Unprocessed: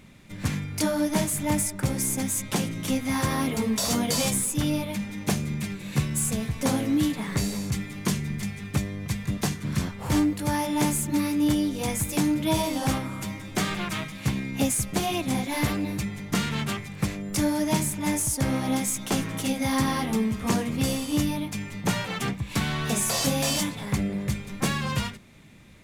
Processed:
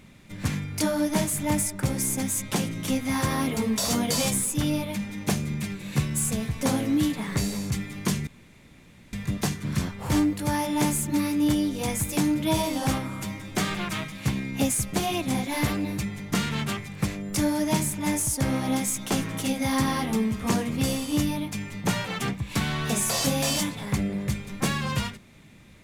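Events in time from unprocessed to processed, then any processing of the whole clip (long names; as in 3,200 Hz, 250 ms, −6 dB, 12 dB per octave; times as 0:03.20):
0:08.27–0:09.13: fill with room tone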